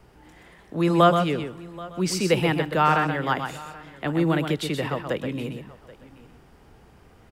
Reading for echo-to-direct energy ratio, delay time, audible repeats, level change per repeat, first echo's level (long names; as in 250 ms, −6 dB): −7.0 dB, 126 ms, 3, repeats not evenly spaced, −7.0 dB